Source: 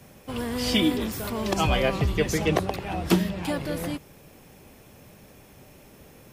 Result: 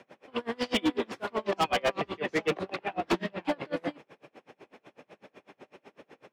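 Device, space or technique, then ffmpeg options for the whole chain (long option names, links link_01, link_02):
helicopter radio: -af "highpass=340,lowpass=2800,aeval=exprs='val(0)*pow(10,-32*(0.5-0.5*cos(2*PI*8*n/s))/20)':channel_layout=same,asoftclip=type=hard:threshold=-28dB,volume=7dB"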